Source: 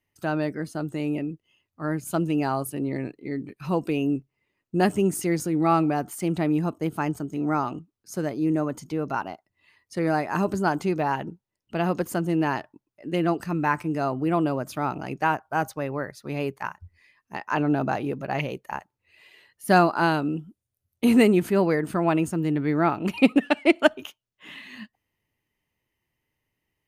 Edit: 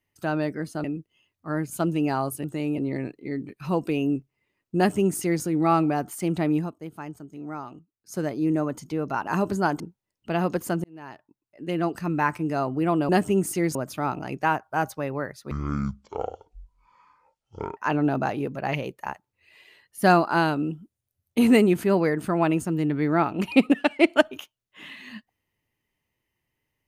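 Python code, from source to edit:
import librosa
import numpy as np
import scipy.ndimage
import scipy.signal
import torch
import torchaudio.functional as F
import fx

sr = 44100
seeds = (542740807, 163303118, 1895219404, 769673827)

y = fx.edit(x, sr, fx.move(start_s=0.84, length_s=0.34, to_s=2.78),
    fx.duplicate(start_s=4.77, length_s=0.66, to_s=14.54),
    fx.fade_down_up(start_s=6.57, length_s=1.58, db=-10.5, fade_s=0.15),
    fx.cut(start_s=9.27, length_s=1.02),
    fx.cut(start_s=10.82, length_s=0.43),
    fx.fade_in_span(start_s=12.29, length_s=1.25),
    fx.speed_span(start_s=16.3, length_s=1.13, speed=0.5), tone=tone)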